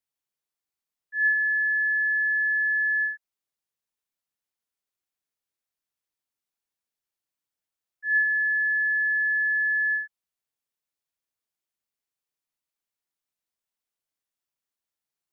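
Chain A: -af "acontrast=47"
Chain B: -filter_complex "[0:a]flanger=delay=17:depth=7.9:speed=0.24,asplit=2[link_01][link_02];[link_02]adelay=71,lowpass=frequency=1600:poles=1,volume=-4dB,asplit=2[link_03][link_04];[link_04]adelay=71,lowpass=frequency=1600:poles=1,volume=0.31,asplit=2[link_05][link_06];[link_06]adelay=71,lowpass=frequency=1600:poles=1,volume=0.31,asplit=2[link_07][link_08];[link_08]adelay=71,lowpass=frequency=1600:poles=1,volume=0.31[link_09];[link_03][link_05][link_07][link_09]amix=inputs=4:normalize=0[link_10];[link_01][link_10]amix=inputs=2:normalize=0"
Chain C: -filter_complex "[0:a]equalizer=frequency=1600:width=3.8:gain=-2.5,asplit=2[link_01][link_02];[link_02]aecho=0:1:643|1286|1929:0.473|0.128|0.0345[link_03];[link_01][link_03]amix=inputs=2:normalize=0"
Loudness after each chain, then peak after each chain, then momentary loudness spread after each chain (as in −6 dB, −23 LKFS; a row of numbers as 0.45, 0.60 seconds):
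−17.0, −25.5, −22.5 LKFS; −11.0, −18.5, −18.0 dBFS; 7, 5, 20 LU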